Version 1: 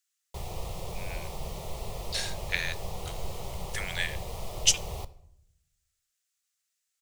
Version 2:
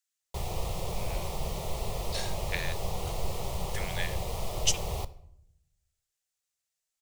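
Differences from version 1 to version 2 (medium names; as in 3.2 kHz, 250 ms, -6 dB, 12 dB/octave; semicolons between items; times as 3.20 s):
speech -5.0 dB; background +3.5 dB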